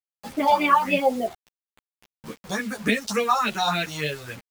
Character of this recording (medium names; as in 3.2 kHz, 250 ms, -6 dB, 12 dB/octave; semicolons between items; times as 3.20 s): phasing stages 4, 3.5 Hz, lowest notch 320–1100 Hz; a quantiser's noise floor 8-bit, dither none; a shimmering, thickened sound